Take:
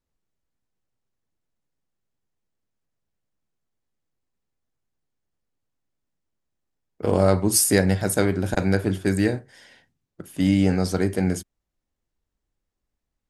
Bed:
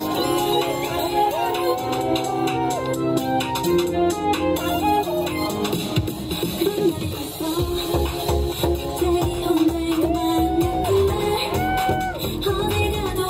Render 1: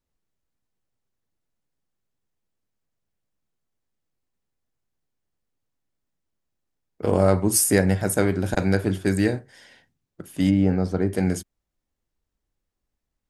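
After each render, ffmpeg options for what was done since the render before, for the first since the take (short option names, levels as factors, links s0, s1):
-filter_complex "[0:a]asettb=1/sr,asplit=3[s0][s1][s2];[s0]atrim=end=7.094[s3];[s1]atrim=start=7.09:end=8.26,asetpts=PTS-STARTPTS,afade=t=in:d=0.004:c=qsin,afade=t=out:st=1.166:d=0.004:c=qsin,equalizer=f=4200:t=o:w=0.77:g=-6[s4];[s2]atrim=start=8.256[s5];[s3][s4]acrossfade=d=0.004:c1=hsin:c2=qsin[s6];[s6][s5]acrossfade=d=0.004:c1=qsin:c2=hsin,asplit=3[s7][s8][s9];[s7]afade=t=out:st=10.49:d=0.02[s10];[s8]lowpass=f=1000:p=1,afade=t=in:st=10.49:d=0.02,afade=t=out:st=11.12:d=0.02[s11];[s9]afade=t=in:st=11.12:d=0.02[s12];[s10][s11][s12]amix=inputs=3:normalize=0"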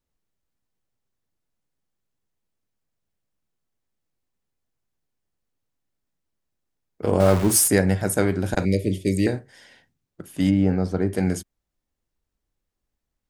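-filter_complex "[0:a]asettb=1/sr,asplit=3[s0][s1][s2];[s0]atrim=end=7.204[s3];[s1]atrim=start=7.2:end=7.68,asetpts=PTS-STARTPTS,afade=t=in:d=0.004:c=qsin,afade=t=out:st=0.476:d=0.004:c=qsin,aeval=exprs='val(0)+0.5*0.0631*sgn(val(0))':c=same[s4];[s2]atrim=start=7.676[s5];[s3][s4]acrossfade=d=0.004:c1=hsin:c2=qsin[s6];[s6][s5]acrossfade=d=0.004:c1=qsin:c2=hsin,asettb=1/sr,asplit=3[s7][s8][s9];[s7]atrim=end=8.654[s10];[s8]atrim=start=8.65:end=9.27,asetpts=PTS-STARTPTS,afade=t=in:d=0.004:c=qsin,afade=t=out:st=0.616:d=0.004:c=qsin,asuperstop=centerf=1100:order=20:qfactor=0.84[s11];[s9]atrim=start=9.266[s12];[s10][s11]acrossfade=d=0.004:c1=hsin:c2=qsin[s13];[s13][s12]acrossfade=d=0.004:c1=qsin:c2=hsin"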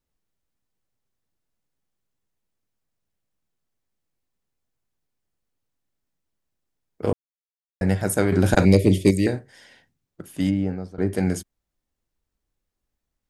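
-filter_complex "[0:a]asettb=1/sr,asplit=3[s0][s1][s2];[s0]atrim=end=8.324[s3];[s1]atrim=start=8.32:end=9.11,asetpts=PTS-STARTPTS,afade=t=in:d=0.004:c=qsin,afade=t=out:st=0.786:d=0.004:c=qsin,acontrast=89[s4];[s2]atrim=start=9.106[s5];[s3][s4]acrossfade=d=0.004:c1=hsin:c2=qsin[s6];[s6][s5]acrossfade=d=0.004:c1=qsin:c2=hsin,asplit=4[s7][s8][s9][s10];[s7]atrim=end=7.13,asetpts=PTS-STARTPTS,afade=t=out:st=7.126:d=0.004:c=hsin[s11];[s8]atrim=start=7.13:end=7.81,asetpts=PTS-STARTPTS,volume=0[s12];[s9]atrim=start=7.81:end=10.98,asetpts=PTS-STARTPTS,afade=t=in:d=0.004:c=hsin,afade=t=out:st=2.48:d=0.69:silence=0.125893[s13];[s10]atrim=start=10.98,asetpts=PTS-STARTPTS,afade=t=in:d=0.004:c=hsin:silence=0.125893[s14];[s11][s12][s13][s14]concat=n=4:v=0:a=1"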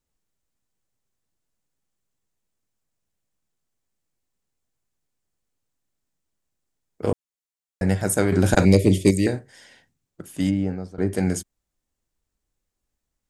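-af "equalizer=f=7500:t=o:w=0.69:g=5.5"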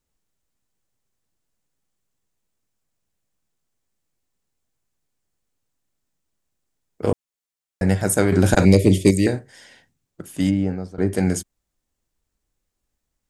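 -af "volume=1.33,alimiter=limit=0.708:level=0:latency=1"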